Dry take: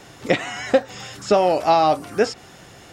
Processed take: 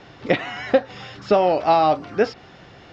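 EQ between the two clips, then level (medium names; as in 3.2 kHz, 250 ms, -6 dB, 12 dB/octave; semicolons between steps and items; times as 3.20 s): low-pass 5.2 kHz 24 dB/octave; distance through air 77 m; 0.0 dB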